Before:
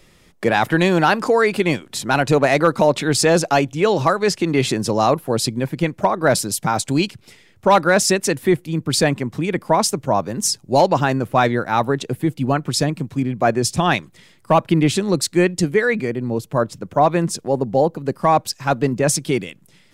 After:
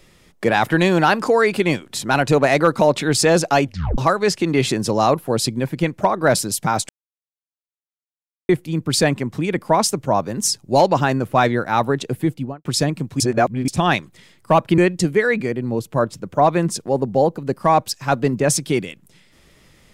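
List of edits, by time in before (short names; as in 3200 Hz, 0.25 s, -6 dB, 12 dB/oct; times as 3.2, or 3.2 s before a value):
3.66 tape stop 0.32 s
6.89–8.49 mute
12.26–12.65 studio fade out
13.2–13.68 reverse
14.78–15.37 cut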